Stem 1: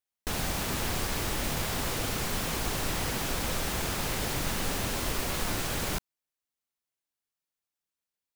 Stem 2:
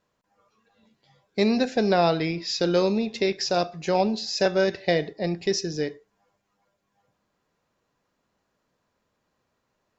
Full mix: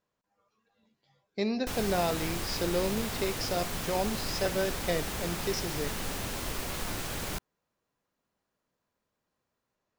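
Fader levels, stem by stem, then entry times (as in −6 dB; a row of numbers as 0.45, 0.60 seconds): −4.0, −8.5 decibels; 1.40, 0.00 seconds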